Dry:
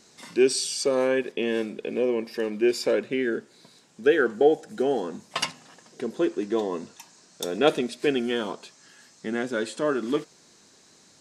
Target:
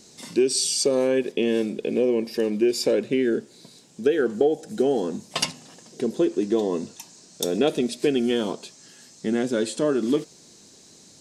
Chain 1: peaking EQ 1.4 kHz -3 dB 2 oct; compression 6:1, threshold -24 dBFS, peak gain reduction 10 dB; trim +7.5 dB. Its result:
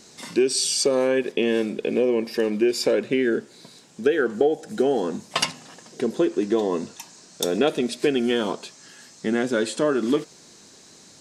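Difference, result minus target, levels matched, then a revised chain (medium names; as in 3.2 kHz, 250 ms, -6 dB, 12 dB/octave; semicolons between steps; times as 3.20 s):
1 kHz band +3.5 dB
peaking EQ 1.4 kHz -10.5 dB 2 oct; compression 6:1, threshold -24 dBFS, peak gain reduction 8.5 dB; trim +7.5 dB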